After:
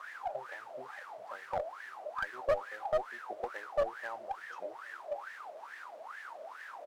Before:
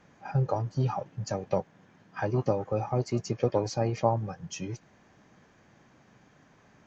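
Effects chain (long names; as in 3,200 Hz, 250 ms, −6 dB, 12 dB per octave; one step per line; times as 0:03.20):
treble cut that deepens with the level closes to 620 Hz, closed at −26 dBFS
high-shelf EQ 3,900 Hz +9.5 dB
bit-depth reduction 6 bits, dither triangular
high-pass filter 430 Hz 12 dB per octave
tilt shelving filter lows +5 dB, about 870 Hz
single-tap delay 1,071 ms −15 dB
log-companded quantiser 4 bits
LFO wah 2.3 Hz 600–1,800 Hz, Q 16
asymmetric clip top −42 dBFS
level +12 dB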